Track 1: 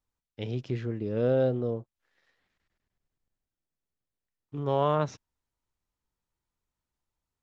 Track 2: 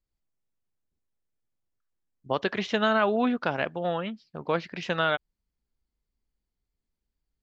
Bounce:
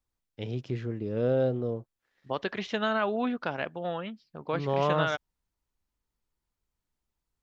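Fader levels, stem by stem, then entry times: -1.0 dB, -4.5 dB; 0.00 s, 0.00 s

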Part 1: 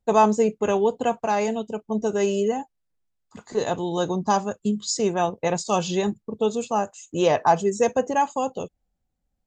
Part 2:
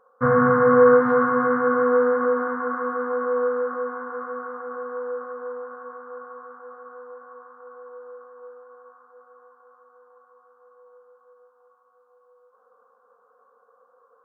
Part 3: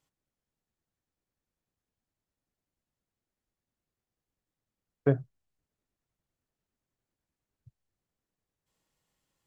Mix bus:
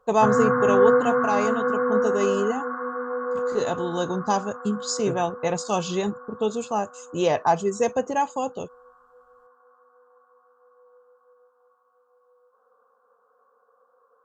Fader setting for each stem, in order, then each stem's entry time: -2.0 dB, -3.5 dB, -7.5 dB; 0.00 s, 0.00 s, 0.00 s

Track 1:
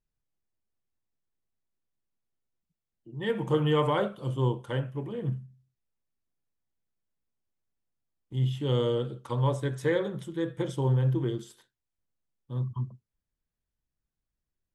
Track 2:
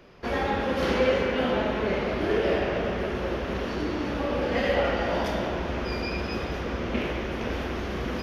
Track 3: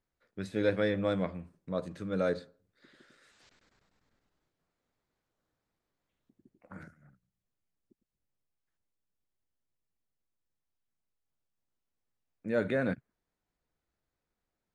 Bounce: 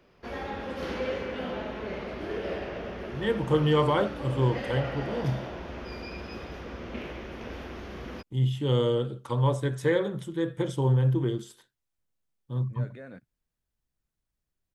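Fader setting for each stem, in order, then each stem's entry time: +2.0 dB, -9.0 dB, -14.5 dB; 0.00 s, 0.00 s, 0.25 s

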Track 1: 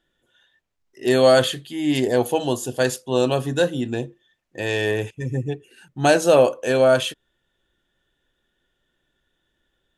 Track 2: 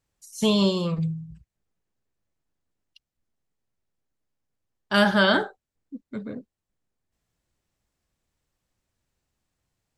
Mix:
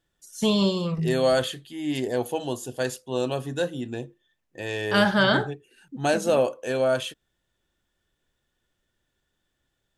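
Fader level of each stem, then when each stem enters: -7.0 dB, -1.0 dB; 0.00 s, 0.00 s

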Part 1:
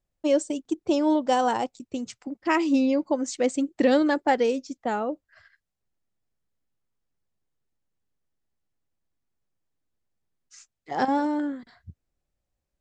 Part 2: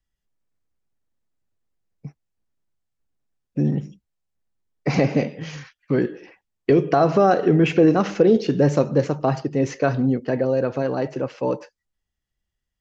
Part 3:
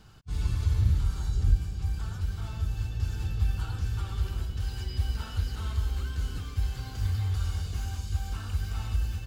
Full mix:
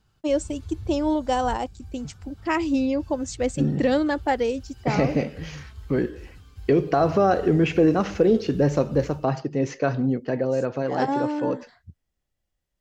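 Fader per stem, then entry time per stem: -1.0 dB, -3.0 dB, -12.5 dB; 0.00 s, 0.00 s, 0.00 s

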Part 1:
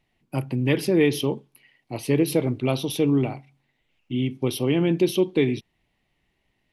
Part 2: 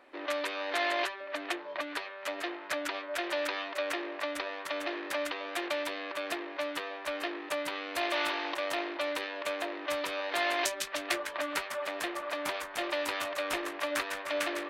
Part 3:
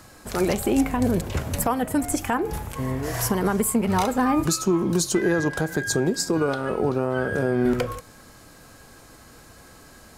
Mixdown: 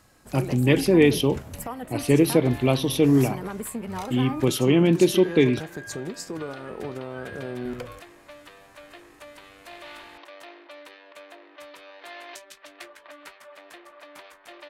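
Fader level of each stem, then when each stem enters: +2.5 dB, -11.5 dB, -11.0 dB; 0.00 s, 1.70 s, 0.00 s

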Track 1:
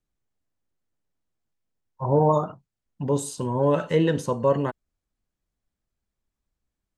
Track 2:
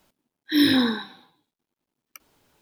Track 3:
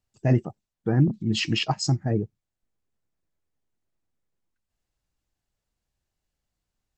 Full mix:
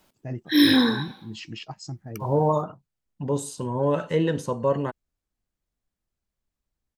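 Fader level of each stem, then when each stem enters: -2.0 dB, +1.5 dB, -13.0 dB; 0.20 s, 0.00 s, 0.00 s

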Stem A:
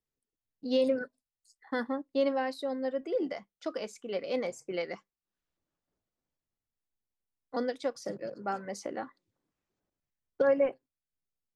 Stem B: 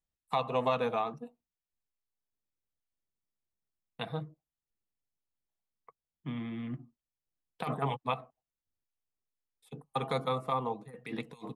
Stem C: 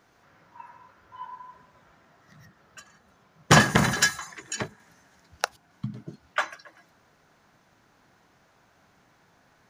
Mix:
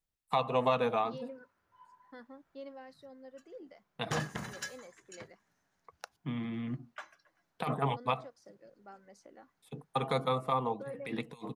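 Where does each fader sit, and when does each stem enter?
-18.5 dB, +1.0 dB, -19.5 dB; 0.40 s, 0.00 s, 0.60 s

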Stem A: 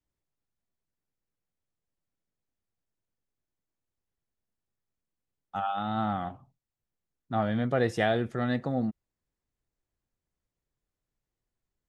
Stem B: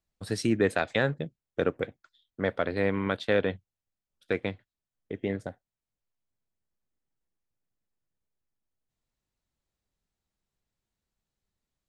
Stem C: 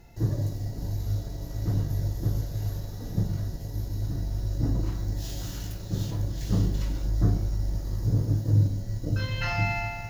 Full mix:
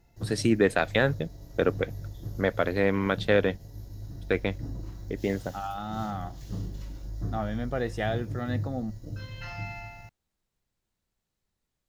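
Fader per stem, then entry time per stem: -4.0 dB, +2.5 dB, -10.5 dB; 0.00 s, 0.00 s, 0.00 s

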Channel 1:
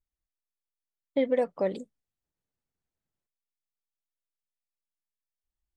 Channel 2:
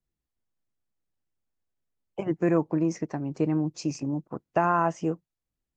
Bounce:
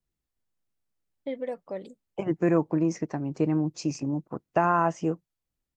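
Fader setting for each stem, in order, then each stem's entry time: -7.5 dB, +0.5 dB; 0.10 s, 0.00 s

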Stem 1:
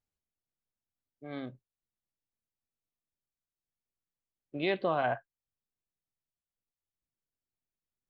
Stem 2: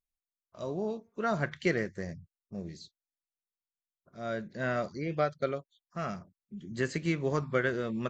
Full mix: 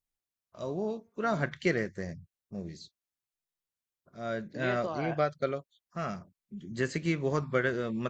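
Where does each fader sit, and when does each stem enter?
-6.5 dB, +0.5 dB; 0.00 s, 0.00 s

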